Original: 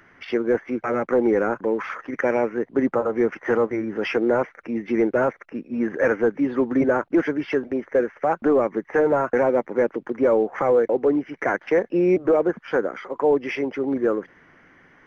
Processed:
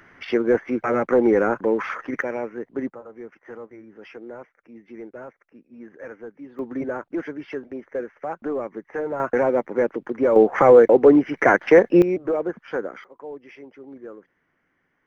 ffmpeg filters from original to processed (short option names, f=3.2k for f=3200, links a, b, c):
-af "asetnsamples=n=441:p=0,asendcmd='2.22 volume volume -7dB;2.9 volume volume -18dB;6.59 volume volume -8.5dB;9.2 volume volume -0.5dB;10.36 volume volume 7dB;12.02 volume volume -5dB;13.04 volume volume -17.5dB',volume=2dB"